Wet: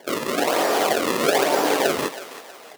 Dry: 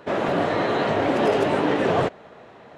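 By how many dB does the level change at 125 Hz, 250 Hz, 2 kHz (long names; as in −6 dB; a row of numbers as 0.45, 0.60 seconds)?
−10.0, −2.5, +3.0 decibels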